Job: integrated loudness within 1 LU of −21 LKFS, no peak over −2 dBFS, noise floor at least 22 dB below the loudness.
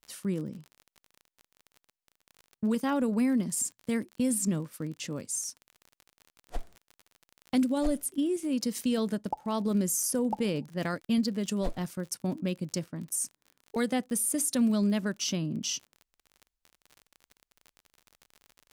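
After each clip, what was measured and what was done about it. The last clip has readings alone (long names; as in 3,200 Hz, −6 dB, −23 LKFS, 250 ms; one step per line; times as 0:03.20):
crackle rate 43 per second; integrated loudness −30.5 LKFS; sample peak −15.5 dBFS; target loudness −21.0 LKFS
→ click removal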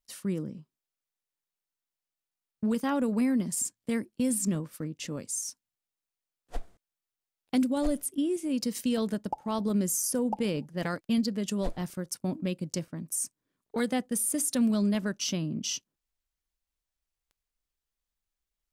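crackle rate 0.21 per second; integrated loudness −30.5 LKFS; sample peak −15.5 dBFS; target loudness −21.0 LKFS
→ level +9.5 dB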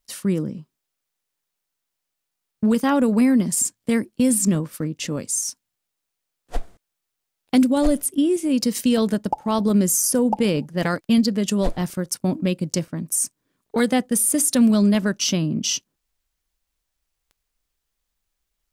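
integrated loudness −21.0 LKFS; sample peak −6.0 dBFS; background noise floor −81 dBFS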